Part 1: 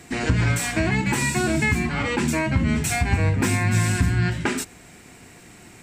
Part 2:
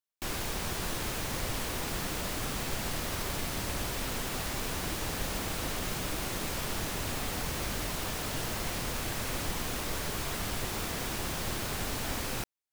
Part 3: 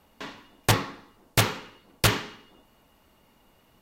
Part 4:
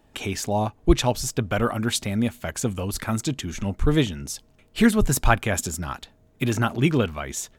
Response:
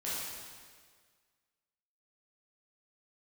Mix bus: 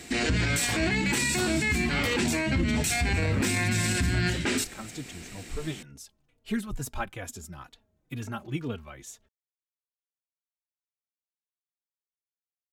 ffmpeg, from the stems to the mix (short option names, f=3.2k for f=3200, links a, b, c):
-filter_complex "[0:a]equalizer=f=125:t=o:w=1:g=-8,equalizer=f=1k:t=o:w=1:g=-7,equalizer=f=4k:t=o:w=1:g=5,volume=2dB[a];[2:a]alimiter=limit=-15.5dB:level=0:latency=1,volume=-6dB[b];[3:a]asplit=2[c][d];[d]adelay=3.5,afreqshift=-2.2[e];[c][e]amix=inputs=2:normalize=1,adelay=1700,volume=-10.5dB[f];[a][b][f]amix=inputs=3:normalize=0,alimiter=limit=-17.5dB:level=0:latency=1:release=24"